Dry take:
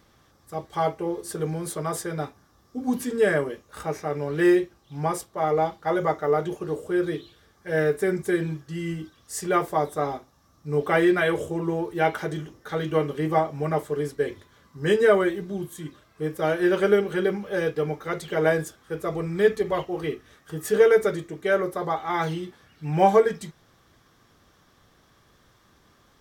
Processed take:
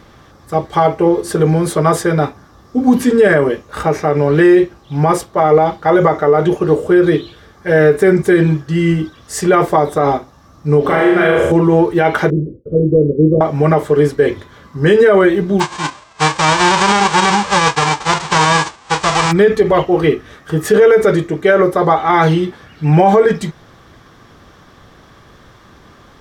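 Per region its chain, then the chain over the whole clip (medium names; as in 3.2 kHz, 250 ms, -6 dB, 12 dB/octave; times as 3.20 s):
10.81–11.52 s: compression 5:1, threshold -29 dBFS + flutter echo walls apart 6.4 m, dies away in 0.9 s
12.30–13.41 s: CVSD coder 16 kbps + expander -49 dBFS + elliptic low-pass 520 Hz
15.59–19.31 s: formants flattened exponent 0.1 + steep low-pass 8.4 kHz 48 dB/octave + peaking EQ 980 Hz +12 dB 0.69 oct
whole clip: low-pass 3.1 kHz 6 dB/octave; loudness maximiser +18 dB; trim -1 dB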